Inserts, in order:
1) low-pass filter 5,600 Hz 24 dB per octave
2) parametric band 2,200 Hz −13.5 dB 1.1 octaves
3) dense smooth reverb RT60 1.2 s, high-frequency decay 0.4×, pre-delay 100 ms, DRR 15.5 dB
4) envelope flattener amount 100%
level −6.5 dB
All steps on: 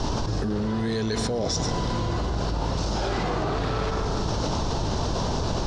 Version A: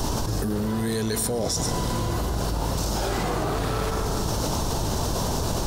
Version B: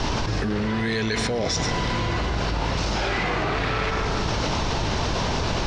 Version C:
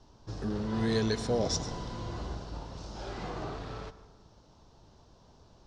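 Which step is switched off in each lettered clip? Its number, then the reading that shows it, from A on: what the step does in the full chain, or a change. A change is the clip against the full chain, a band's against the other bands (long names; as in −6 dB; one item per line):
1, 8 kHz band +6.5 dB
2, 2 kHz band +8.5 dB
4, change in crest factor +7.0 dB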